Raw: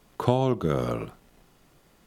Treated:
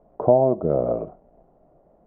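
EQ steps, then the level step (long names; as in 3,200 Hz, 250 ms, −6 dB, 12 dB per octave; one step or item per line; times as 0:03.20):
low-pass with resonance 650 Hz, resonance Q 4.9
high-frequency loss of the air 230 metres
parametric band 110 Hz −8.5 dB 0.27 octaves
0.0 dB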